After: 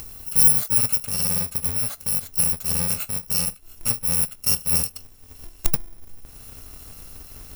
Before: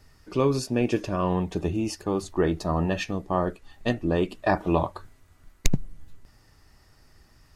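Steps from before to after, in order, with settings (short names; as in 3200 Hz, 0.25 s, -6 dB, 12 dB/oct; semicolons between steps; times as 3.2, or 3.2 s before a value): FFT order left unsorted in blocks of 128 samples; high shelf 8600 Hz +10 dB, from 0.78 s +4.5 dB; upward compressor, threshold -25 dBFS; gain -1 dB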